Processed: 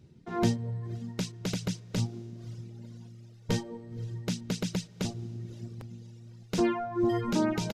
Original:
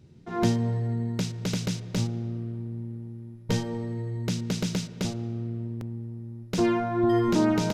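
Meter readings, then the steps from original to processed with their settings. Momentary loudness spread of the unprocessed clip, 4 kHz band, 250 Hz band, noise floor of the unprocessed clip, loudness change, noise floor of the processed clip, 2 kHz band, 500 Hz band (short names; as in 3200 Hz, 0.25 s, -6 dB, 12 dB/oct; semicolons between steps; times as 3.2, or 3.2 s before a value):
13 LU, -3.0 dB, -5.0 dB, -46 dBFS, -4.0 dB, -53 dBFS, -3.5 dB, -4.5 dB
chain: diffused feedback echo 0.521 s, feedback 53%, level -14 dB; reverb removal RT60 1.9 s; downsampling 32000 Hz; gain -2 dB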